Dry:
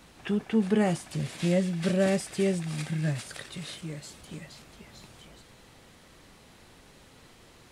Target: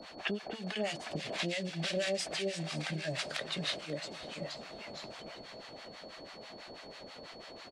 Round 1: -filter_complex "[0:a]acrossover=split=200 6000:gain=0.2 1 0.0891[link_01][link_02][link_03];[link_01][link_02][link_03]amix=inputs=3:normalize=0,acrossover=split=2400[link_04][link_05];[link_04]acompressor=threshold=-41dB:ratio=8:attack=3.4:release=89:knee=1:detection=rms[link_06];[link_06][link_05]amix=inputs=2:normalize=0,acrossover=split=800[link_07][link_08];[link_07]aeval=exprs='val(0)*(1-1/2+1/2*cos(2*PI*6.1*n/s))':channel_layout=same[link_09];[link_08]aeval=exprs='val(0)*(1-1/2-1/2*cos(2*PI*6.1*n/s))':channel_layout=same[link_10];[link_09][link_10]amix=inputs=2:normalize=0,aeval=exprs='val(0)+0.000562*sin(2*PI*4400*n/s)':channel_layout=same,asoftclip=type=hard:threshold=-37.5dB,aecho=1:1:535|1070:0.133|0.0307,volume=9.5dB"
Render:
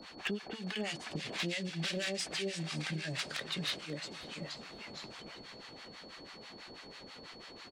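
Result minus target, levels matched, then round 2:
hard clipping: distortion +18 dB; 500 Hz band −4.0 dB
-filter_complex "[0:a]acrossover=split=200 6000:gain=0.2 1 0.0891[link_01][link_02][link_03];[link_01][link_02][link_03]amix=inputs=3:normalize=0,acrossover=split=2400[link_04][link_05];[link_04]acompressor=threshold=-41dB:ratio=8:attack=3.4:release=89:knee=1:detection=rms,equalizer=frequency=630:width_type=o:width=0.51:gain=10[link_06];[link_06][link_05]amix=inputs=2:normalize=0,acrossover=split=800[link_07][link_08];[link_07]aeval=exprs='val(0)*(1-1/2+1/2*cos(2*PI*6.1*n/s))':channel_layout=same[link_09];[link_08]aeval=exprs='val(0)*(1-1/2-1/2*cos(2*PI*6.1*n/s))':channel_layout=same[link_10];[link_09][link_10]amix=inputs=2:normalize=0,aeval=exprs='val(0)+0.000562*sin(2*PI*4400*n/s)':channel_layout=same,asoftclip=type=hard:threshold=-28.5dB,aecho=1:1:535|1070:0.133|0.0307,volume=9.5dB"

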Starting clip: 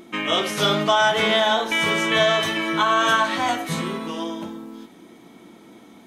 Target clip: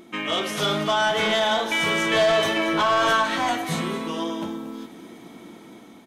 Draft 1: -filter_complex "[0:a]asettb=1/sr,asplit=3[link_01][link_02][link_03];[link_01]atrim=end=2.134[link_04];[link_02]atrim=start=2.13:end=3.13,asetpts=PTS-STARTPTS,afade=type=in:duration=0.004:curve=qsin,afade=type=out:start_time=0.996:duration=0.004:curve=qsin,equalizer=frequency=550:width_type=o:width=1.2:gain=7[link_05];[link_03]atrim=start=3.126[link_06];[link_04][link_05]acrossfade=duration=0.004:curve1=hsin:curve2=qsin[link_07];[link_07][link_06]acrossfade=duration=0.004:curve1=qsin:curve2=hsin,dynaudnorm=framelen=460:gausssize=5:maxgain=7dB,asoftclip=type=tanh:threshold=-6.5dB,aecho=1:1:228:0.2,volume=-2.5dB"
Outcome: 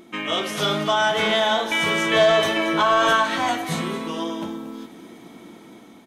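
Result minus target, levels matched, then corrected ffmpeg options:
soft clipping: distortion −7 dB
-filter_complex "[0:a]asettb=1/sr,asplit=3[link_01][link_02][link_03];[link_01]atrim=end=2.134[link_04];[link_02]atrim=start=2.13:end=3.13,asetpts=PTS-STARTPTS,afade=type=in:duration=0.004:curve=qsin,afade=type=out:start_time=0.996:duration=0.004:curve=qsin,equalizer=frequency=550:width_type=o:width=1.2:gain=7[link_05];[link_03]atrim=start=3.126[link_06];[link_04][link_05]acrossfade=duration=0.004:curve1=hsin:curve2=qsin[link_07];[link_07][link_06]acrossfade=duration=0.004:curve1=qsin:curve2=hsin,dynaudnorm=framelen=460:gausssize=5:maxgain=7dB,asoftclip=type=tanh:threshold=-12.5dB,aecho=1:1:228:0.2,volume=-2.5dB"

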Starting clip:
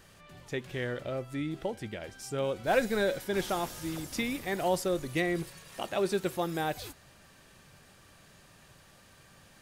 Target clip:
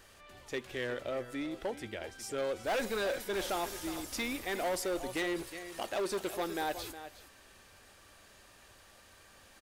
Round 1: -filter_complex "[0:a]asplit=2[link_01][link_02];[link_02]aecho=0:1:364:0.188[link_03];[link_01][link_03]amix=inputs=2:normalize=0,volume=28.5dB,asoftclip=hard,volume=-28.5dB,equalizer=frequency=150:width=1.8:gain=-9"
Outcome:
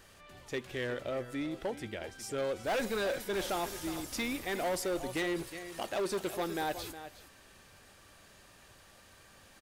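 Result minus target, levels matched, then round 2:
125 Hz band +4.0 dB
-filter_complex "[0:a]asplit=2[link_01][link_02];[link_02]aecho=0:1:364:0.188[link_03];[link_01][link_03]amix=inputs=2:normalize=0,volume=28.5dB,asoftclip=hard,volume=-28.5dB,equalizer=frequency=150:width=1.8:gain=-16"

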